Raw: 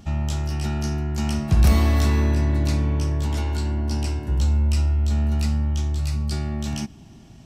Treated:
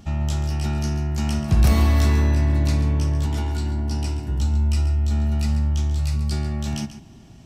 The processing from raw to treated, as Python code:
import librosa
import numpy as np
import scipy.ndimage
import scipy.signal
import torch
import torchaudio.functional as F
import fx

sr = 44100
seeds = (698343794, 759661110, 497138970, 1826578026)

y = fx.notch_comb(x, sr, f0_hz=540.0, at=(3.26, 5.49))
y = y + 10.0 ** (-12.5 / 20.0) * np.pad(y, (int(137 * sr / 1000.0), 0))[:len(y)]